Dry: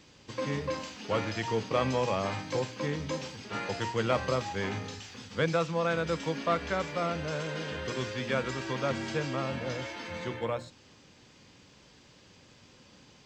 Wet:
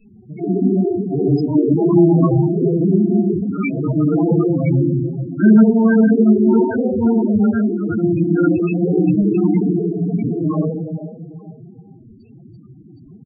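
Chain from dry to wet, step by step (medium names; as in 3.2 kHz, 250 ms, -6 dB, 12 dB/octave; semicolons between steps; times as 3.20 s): rattle on loud lows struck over -37 dBFS, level -26 dBFS; band-stop 1.8 kHz, Q 6.5; feedback delay 439 ms, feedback 37%, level -12.5 dB; simulated room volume 920 m³, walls mixed, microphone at 9.3 m; dynamic bell 250 Hz, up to +5 dB, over -28 dBFS, Q 1.1; formant-preserving pitch shift +5 st; loudest bins only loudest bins 8; peaking EQ 620 Hz -10.5 dB 1.2 oct; trim +2 dB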